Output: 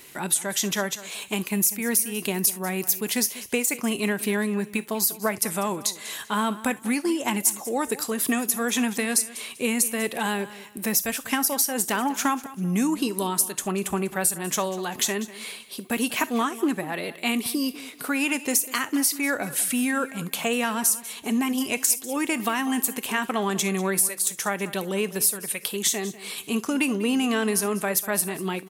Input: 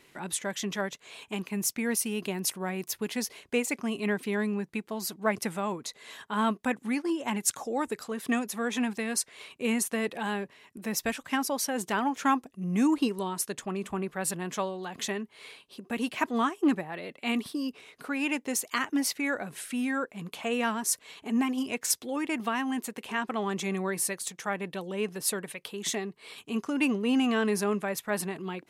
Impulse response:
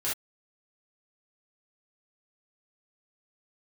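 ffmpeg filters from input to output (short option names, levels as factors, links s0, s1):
-filter_complex "[0:a]aemphasis=mode=production:type=50fm,acompressor=threshold=0.0398:ratio=6,aecho=1:1:195|390|585:0.141|0.041|0.0119,asplit=2[s0][s1];[1:a]atrim=start_sample=2205,highshelf=f=4800:g=11[s2];[s1][s2]afir=irnorm=-1:irlink=0,volume=0.0596[s3];[s0][s3]amix=inputs=2:normalize=0,volume=2.24"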